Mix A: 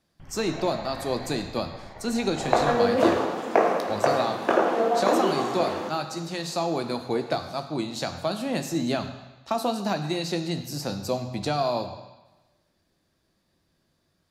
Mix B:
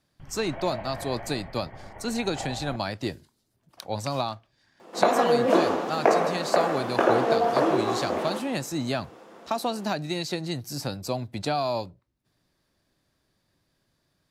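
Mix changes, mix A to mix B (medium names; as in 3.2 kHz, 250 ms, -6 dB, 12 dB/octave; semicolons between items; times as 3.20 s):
speech: send off; second sound: entry +2.50 s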